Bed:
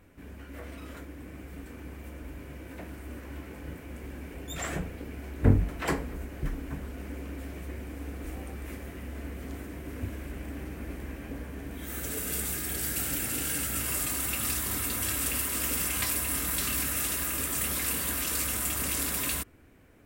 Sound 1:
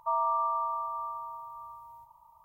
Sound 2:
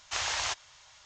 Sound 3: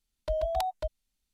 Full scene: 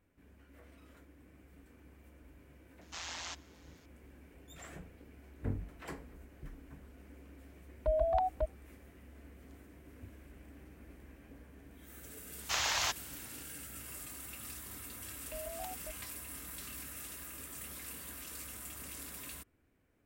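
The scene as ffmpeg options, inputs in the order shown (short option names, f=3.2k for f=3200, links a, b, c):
-filter_complex "[2:a]asplit=2[a][b];[3:a]asplit=2[c][d];[0:a]volume=-16dB[e];[a]tremolo=f=170:d=0.667[f];[c]lowpass=1.5k[g];[f]atrim=end=1.05,asetpts=PTS-STARTPTS,volume=-8.5dB,afade=t=in:d=0.004:c=hsin,afade=t=out:st=1.046:d=0.004:c=hsin,adelay=2810[h];[g]atrim=end=1.33,asetpts=PTS-STARTPTS,volume=-0.5dB,afade=t=in:d=0.004:c=hsin,afade=t=out:st=1.326:d=0.004:c=hsin,adelay=7580[i];[b]atrim=end=1.05,asetpts=PTS-STARTPTS,volume=-1dB,afade=t=in:d=0.004:c=hsin,afade=t=out:st=1.046:d=0.004:c=hsin,adelay=12380[j];[d]atrim=end=1.33,asetpts=PTS-STARTPTS,volume=-15dB,afade=t=in:d=0.004:c=hsin,afade=t=out:st=1.326:d=0.004:c=hsin,adelay=15040[k];[e][h][i][j][k]amix=inputs=5:normalize=0"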